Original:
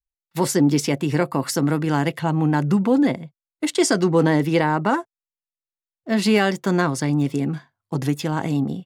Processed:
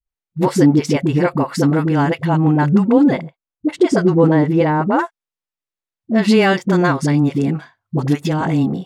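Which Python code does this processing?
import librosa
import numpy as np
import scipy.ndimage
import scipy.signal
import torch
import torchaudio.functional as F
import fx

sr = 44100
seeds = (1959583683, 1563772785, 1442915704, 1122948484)

y = fx.lowpass(x, sr, hz=fx.steps((0.0, 2300.0), (3.17, 1000.0), (4.93, 3700.0)), slope=6)
y = fx.dispersion(y, sr, late='highs', ms=60.0, hz=400.0)
y = y * librosa.db_to_amplitude(5.5)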